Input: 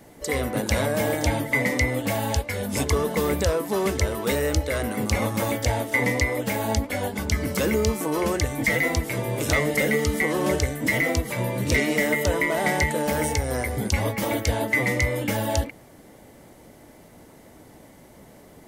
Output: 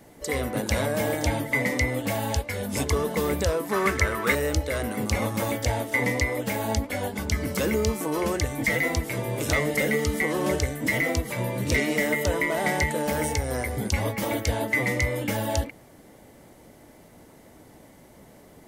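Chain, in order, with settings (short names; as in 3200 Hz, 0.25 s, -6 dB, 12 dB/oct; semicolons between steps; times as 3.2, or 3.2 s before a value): 3.69–4.35 band shelf 1600 Hz +10.5 dB 1.3 oct; gain -2 dB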